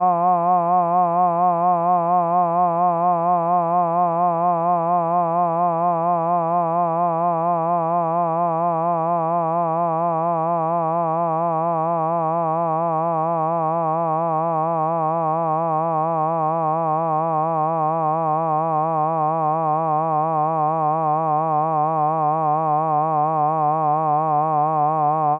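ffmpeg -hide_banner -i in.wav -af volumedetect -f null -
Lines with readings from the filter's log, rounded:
mean_volume: -19.4 dB
max_volume: -8.3 dB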